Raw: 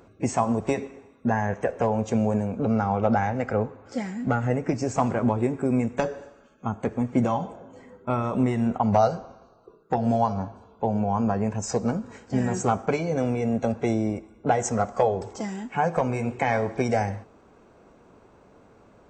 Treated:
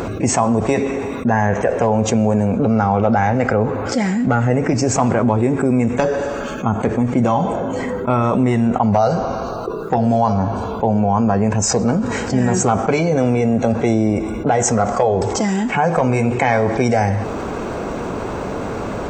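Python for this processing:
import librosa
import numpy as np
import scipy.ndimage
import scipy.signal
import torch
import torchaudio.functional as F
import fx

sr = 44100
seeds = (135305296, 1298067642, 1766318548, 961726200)

y = fx.env_flatten(x, sr, amount_pct=70)
y = y * librosa.db_to_amplitude(3.5)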